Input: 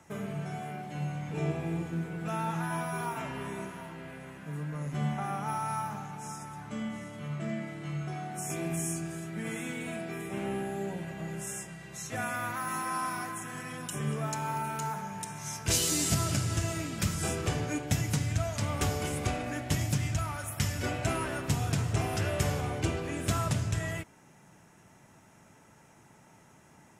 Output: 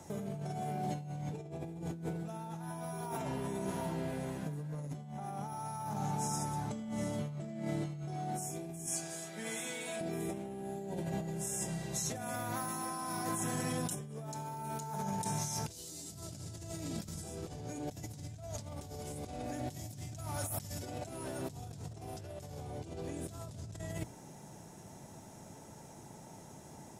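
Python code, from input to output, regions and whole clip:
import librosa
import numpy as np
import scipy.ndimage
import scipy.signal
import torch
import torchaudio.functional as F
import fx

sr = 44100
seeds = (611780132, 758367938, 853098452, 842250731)

y = fx.chain(x, sr, fx.highpass(hz=1500.0, slope=6),
    fx.high_shelf(hz=10000.0, db=-10.0),
    fx.doubler(ms=14.0, db=-7), at=(8.86, 10.01))
y = fx.chain(y, sr, fx.highpass(hz=78.0, slope=12),
    fx.high_shelf(hz=8000.0, db=4.5), at=(19.67, 21.49))
y = fx.band_shelf(y, sr, hz=1800.0, db=-10.0, octaves=1.7)
y = fx.hum_notches(y, sr, base_hz=60, count=5)
y = fx.over_compress(y, sr, threshold_db=-42.0, ratio=-1.0)
y = y * librosa.db_to_amplitude(1.0)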